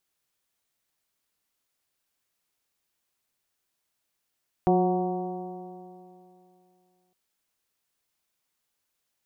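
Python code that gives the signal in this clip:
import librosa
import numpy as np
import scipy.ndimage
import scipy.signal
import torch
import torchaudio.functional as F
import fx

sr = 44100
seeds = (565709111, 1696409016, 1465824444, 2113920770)

y = fx.additive_stiff(sr, length_s=2.46, hz=180.0, level_db=-22.5, upper_db=(2.0, -7.5, 0.5, -12, -20.0), decay_s=2.73, stiffness=0.0026)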